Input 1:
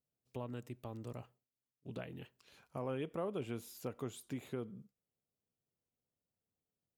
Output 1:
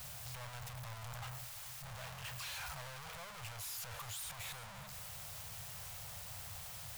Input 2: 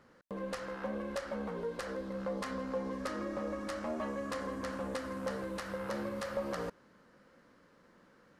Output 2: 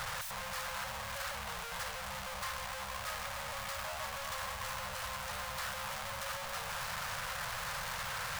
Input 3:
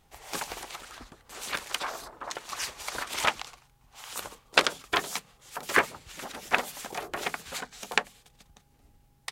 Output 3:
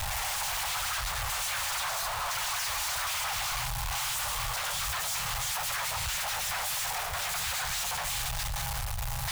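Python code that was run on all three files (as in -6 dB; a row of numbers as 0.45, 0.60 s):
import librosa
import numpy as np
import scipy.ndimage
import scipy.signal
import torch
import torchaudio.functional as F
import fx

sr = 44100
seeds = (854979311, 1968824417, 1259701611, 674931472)

y = np.sign(x) * np.sqrt(np.mean(np.square(x)))
y = scipy.signal.sosfilt(scipy.signal.cheby1(2, 1.0, [110.0, 810.0], 'bandstop', fs=sr, output='sos'), y)
y = y + 10.0 ** (-15.0 / 20.0) * np.pad(y, (int(348 * sr / 1000.0), 0))[:len(y)]
y = F.gain(torch.from_numpy(y), 3.0).numpy()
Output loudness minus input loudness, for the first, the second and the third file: -0.5, 0.0, +1.0 LU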